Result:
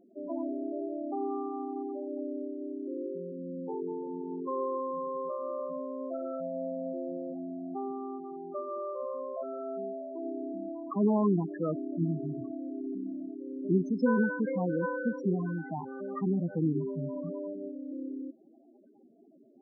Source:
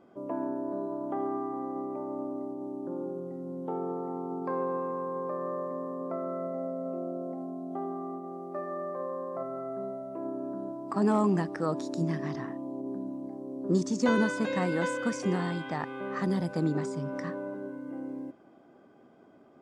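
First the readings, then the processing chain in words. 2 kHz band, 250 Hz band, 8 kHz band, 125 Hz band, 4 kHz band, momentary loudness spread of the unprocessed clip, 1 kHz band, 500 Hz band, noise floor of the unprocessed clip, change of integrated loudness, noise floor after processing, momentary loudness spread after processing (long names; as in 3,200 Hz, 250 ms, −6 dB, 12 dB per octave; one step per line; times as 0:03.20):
−4.5 dB, −0.5 dB, below −25 dB, −0.5 dB, below −25 dB, 10 LU, −3.5 dB, −1.0 dB, −57 dBFS, −1.0 dB, −59 dBFS, 10 LU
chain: spectral peaks only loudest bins 8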